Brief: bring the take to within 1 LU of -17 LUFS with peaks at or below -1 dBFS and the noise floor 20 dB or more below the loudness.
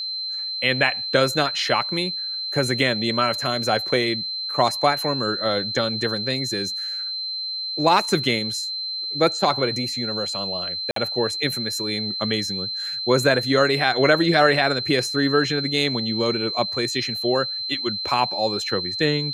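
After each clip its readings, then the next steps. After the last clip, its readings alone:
dropouts 1; longest dropout 53 ms; steady tone 4.1 kHz; tone level -26 dBFS; loudness -21.5 LUFS; peak level -3.0 dBFS; loudness target -17.0 LUFS
-> interpolate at 10.91 s, 53 ms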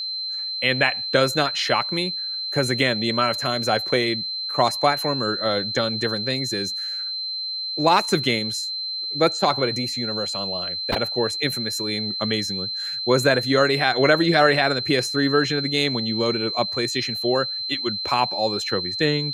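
dropouts 0; steady tone 4.1 kHz; tone level -26 dBFS
-> band-stop 4.1 kHz, Q 30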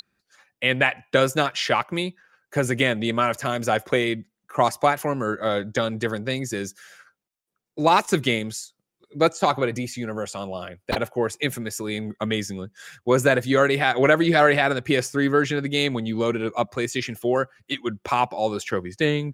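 steady tone not found; loudness -23.0 LUFS; peak level -3.5 dBFS; loudness target -17.0 LUFS
-> trim +6 dB; peak limiter -1 dBFS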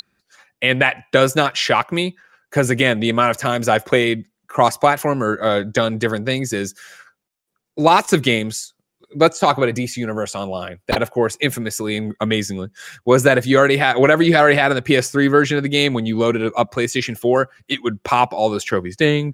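loudness -17.5 LUFS; peak level -1.0 dBFS; noise floor -77 dBFS

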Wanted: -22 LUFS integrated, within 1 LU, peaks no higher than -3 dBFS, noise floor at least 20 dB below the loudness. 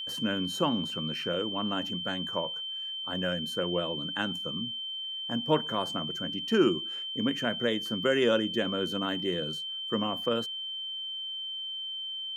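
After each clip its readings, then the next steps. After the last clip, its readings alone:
steady tone 3.1 kHz; tone level -34 dBFS; loudness -30.5 LUFS; peak level -11.0 dBFS; loudness target -22.0 LUFS
-> band-stop 3.1 kHz, Q 30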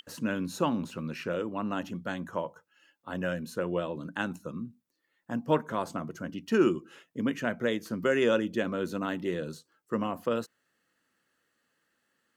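steady tone not found; loudness -31.5 LUFS; peak level -11.5 dBFS; loudness target -22.0 LUFS
-> trim +9.5 dB; peak limiter -3 dBFS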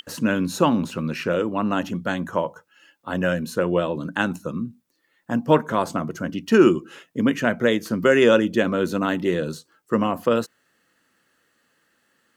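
loudness -22.5 LUFS; peak level -3.0 dBFS; noise floor -68 dBFS

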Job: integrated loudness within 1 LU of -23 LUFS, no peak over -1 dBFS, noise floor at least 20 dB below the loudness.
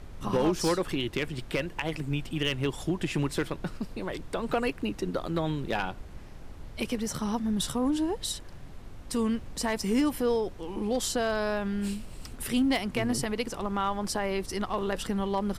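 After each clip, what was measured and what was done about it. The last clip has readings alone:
clipped samples 0.3%; clipping level -19.0 dBFS; noise floor -44 dBFS; noise floor target -51 dBFS; loudness -30.5 LUFS; peak level -19.0 dBFS; loudness target -23.0 LUFS
-> clip repair -19 dBFS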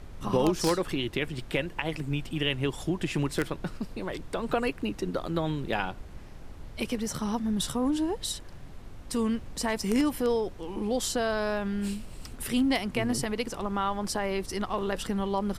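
clipped samples 0.0%; noise floor -44 dBFS; noise floor target -50 dBFS
-> noise print and reduce 6 dB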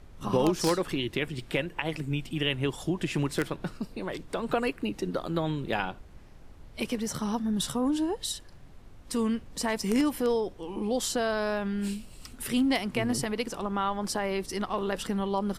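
noise floor -49 dBFS; noise floor target -50 dBFS
-> noise print and reduce 6 dB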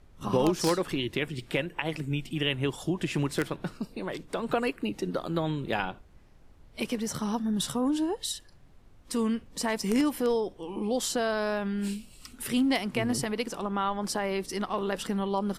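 noise floor -55 dBFS; loudness -30.0 LUFS; peak level -10.0 dBFS; loudness target -23.0 LUFS
-> trim +7 dB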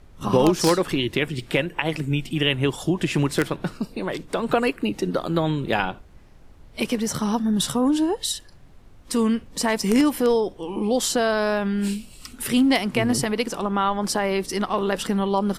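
loudness -23.0 LUFS; peak level -3.0 dBFS; noise floor -48 dBFS

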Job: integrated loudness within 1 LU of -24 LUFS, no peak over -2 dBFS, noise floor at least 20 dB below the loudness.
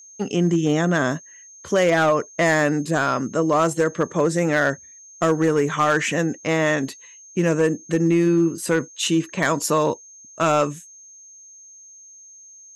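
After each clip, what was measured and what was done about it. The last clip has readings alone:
clipped samples 0.7%; clipping level -11.5 dBFS; steady tone 6.4 kHz; tone level -43 dBFS; loudness -21.0 LUFS; peak level -11.5 dBFS; loudness target -24.0 LUFS
-> clip repair -11.5 dBFS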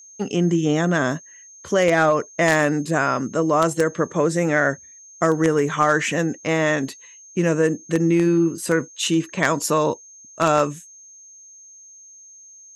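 clipped samples 0.0%; steady tone 6.4 kHz; tone level -43 dBFS
-> band-stop 6.4 kHz, Q 30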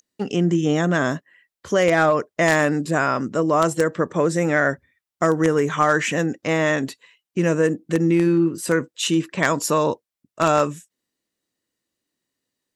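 steady tone not found; loudness -20.5 LUFS; peak level -2.5 dBFS; loudness target -24.0 LUFS
-> trim -3.5 dB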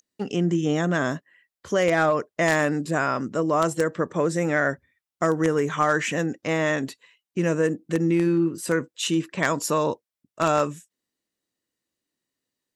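loudness -24.0 LUFS; peak level -6.0 dBFS; noise floor -90 dBFS

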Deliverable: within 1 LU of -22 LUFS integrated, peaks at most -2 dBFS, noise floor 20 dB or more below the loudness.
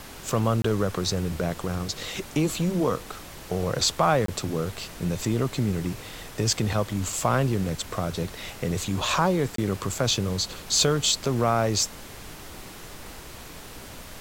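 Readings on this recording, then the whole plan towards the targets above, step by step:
dropouts 3; longest dropout 23 ms; noise floor -42 dBFS; noise floor target -46 dBFS; loudness -26.0 LUFS; peak level -7.5 dBFS; loudness target -22.0 LUFS
-> interpolate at 0.62/4.26/9.56 s, 23 ms; noise print and reduce 6 dB; trim +4 dB

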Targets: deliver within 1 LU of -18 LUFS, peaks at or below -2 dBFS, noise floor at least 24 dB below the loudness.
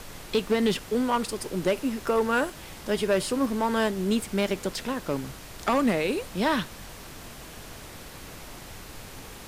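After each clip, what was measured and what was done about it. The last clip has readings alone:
clipped samples 0.6%; clipping level -17.0 dBFS; noise floor -44 dBFS; noise floor target -51 dBFS; loudness -27.0 LUFS; peak level -17.0 dBFS; loudness target -18.0 LUFS
-> clip repair -17 dBFS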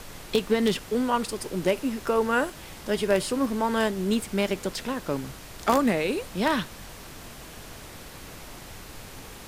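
clipped samples 0.0%; noise floor -44 dBFS; noise floor target -51 dBFS
-> noise print and reduce 7 dB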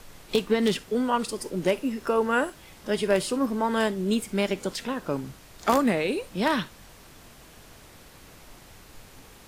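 noise floor -50 dBFS; noise floor target -51 dBFS
-> noise print and reduce 6 dB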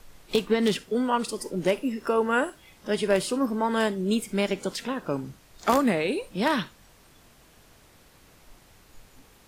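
noise floor -56 dBFS; loudness -26.5 LUFS; peak level -8.0 dBFS; loudness target -18.0 LUFS
-> trim +8.5 dB; peak limiter -2 dBFS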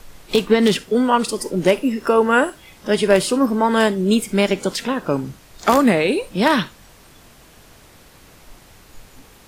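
loudness -18.0 LUFS; peak level -2.0 dBFS; noise floor -48 dBFS

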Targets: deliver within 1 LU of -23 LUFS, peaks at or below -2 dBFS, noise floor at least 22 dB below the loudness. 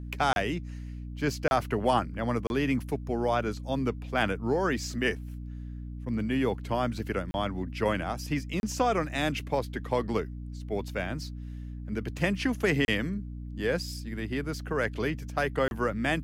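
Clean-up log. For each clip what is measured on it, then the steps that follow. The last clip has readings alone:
dropouts 7; longest dropout 31 ms; hum 60 Hz; highest harmonic 300 Hz; hum level -36 dBFS; loudness -30.0 LUFS; peak level -11.0 dBFS; loudness target -23.0 LUFS
-> interpolate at 0.33/1.48/2.47/7.31/8.60/12.85/15.68 s, 31 ms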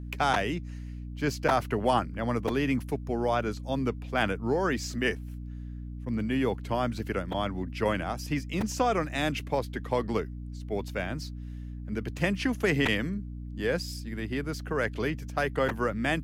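dropouts 0; hum 60 Hz; highest harmonic 300 Hz; hum level -36 dBFS
-> de-hum 60 Hz, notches 5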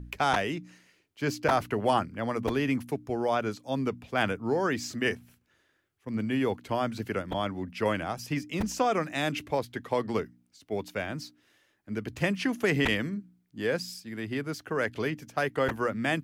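hum not found; loudness -30.5 LUFS; peak level -11.0 dBFS; loudness target -23.0 LUFS
-> trim +7.5 dB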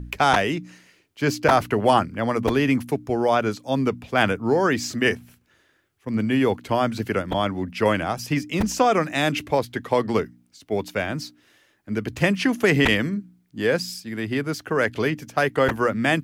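loudness -23.0 LUFS; peak level -3.5 dBFS; noise floor -64 dBFS

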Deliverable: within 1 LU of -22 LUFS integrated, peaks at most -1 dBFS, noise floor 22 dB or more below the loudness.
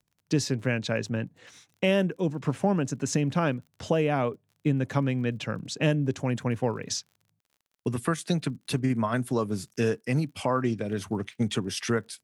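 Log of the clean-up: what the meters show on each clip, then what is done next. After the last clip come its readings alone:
tick rate 39 per s; loudness -28.5 LUFS; peak level -10.5 dBFS; loudness target -22.0 LUFS
-> de-click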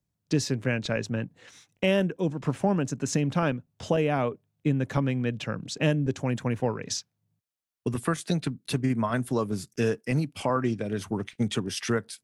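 tick rate 0 per s; loudness -28.5 LUFS; peak level -10.5 dBFS; loudness target -22.0 LUFS
-> trim +6.5 dB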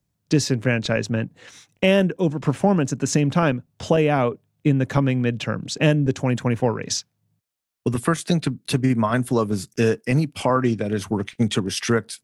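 loudness -22.0 LUFS; peak level -4.0 dBFS; noise floor -75 dBFS

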